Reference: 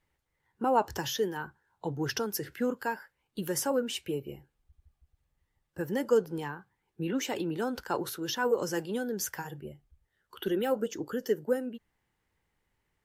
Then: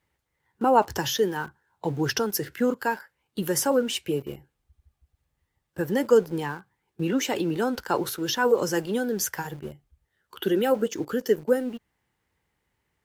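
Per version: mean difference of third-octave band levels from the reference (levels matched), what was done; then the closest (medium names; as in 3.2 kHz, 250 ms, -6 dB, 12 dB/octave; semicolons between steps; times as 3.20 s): 1.5 dB: high-pass 48 Hz 12 dB/octave; in parallel at -6.5 dB: small samples zeroed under -42 dBFS; on the sum: trim +3 dB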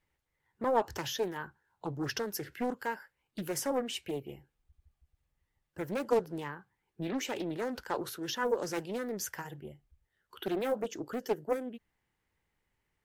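2.5 dB: peaking EQ 2.3 kHz +2 dB; loudspeaker Doppler distortion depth 0.45 ms; trim -3 dB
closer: first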